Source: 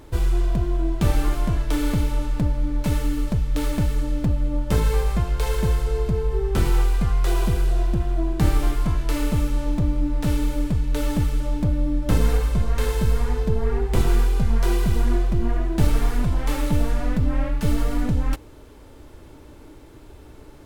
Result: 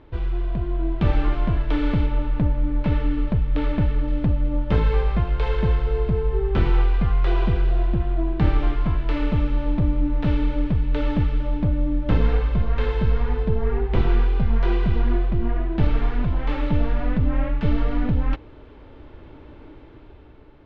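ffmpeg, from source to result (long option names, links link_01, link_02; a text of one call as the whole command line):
ffmpeg -i in.wav -filter_complex "[0:a]asettb=1/sr,asplit=3[link_01][link_02][link_03];[link_01]atrim=end=2.064[link_04];[link_02]atrim=start=2.06:end=4.08,asetpts=PTS-STARTPTS,afade=type=in:duration=0.004:curve=qsin,afade=type=out:start_time=2.016:duration=0.004:curve=qsin,highshelf=frequency=5500:gain=-9[link_05];[link_03]atrim=start=4.076[link_06];[link_04][link_05]acrossfade=duration=0.004:curve1=hsin:curve2=qsin[link_07];[link_07][link_06]acrossfade=duration=0.004:curve1=qsin:curve2=hsin,dynaudnorm=framelen=120:gausssize=13:maxgain=6dB,lowpass=frequency=3400:width=0.5412,lowpass=frequency=3400:width=1.3066,volume=-4.5dB" out.wav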